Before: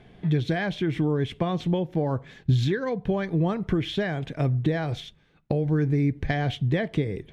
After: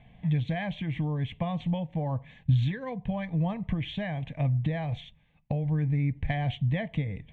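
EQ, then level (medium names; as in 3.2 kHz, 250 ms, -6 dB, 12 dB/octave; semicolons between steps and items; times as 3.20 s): distance through air 120 m; peaking EQ 770 Hz -3 dB 1.7 oct; static phaser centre 1.4 kHz, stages 6; 0.0 dB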